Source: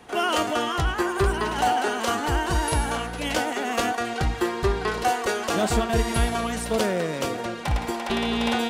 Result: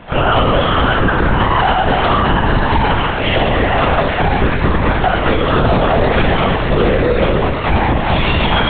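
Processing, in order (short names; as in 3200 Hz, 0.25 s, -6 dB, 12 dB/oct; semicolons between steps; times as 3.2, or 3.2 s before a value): air absorption 120 m; flutter echo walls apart 5 m, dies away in 0.78 s; LPC vocoder at 8 kHz whisper; maximiser +15 dB; gain -3 dB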